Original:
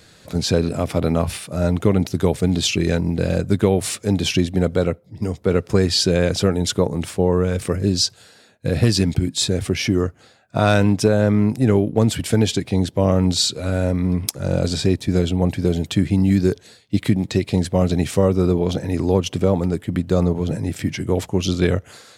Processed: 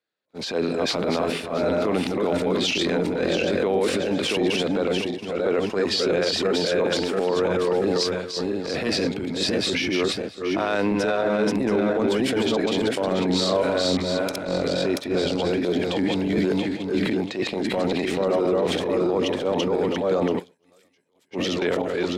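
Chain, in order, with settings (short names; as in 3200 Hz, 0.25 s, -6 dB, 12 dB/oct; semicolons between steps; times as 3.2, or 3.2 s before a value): regenerating reverse delay 0.341 s, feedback 50%, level -1 dB; 20.39–21.31 pre-emphasis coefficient 0.9; expander -19 dBFS; three-band isolator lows -23 dB, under 250 Hz, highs -15 dB, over 4300 Hz; transient shaper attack -11 dB, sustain +5 dB; limiter -13 dBFS, peak gain reduction 9 dB; 13.26–13.97 doubler 33 ms -7 dB; 16.38–17.07 three-band squash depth 70%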